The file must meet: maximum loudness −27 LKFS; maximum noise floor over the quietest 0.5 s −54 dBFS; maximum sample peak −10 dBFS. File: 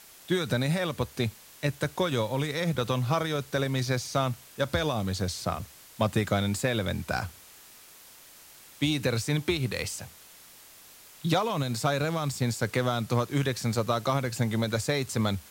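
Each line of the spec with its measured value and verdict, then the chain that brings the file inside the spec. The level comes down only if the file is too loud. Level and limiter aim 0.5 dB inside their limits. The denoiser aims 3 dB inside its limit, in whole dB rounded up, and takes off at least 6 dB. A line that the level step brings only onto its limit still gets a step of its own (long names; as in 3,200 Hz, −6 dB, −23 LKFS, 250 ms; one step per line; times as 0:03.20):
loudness −29.0 LKFS: in spec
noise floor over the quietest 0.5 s −52 dBFS: out of spec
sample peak −13.0 dBFS: in spec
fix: broadband denoise 6 dB, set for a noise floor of −52 dBFS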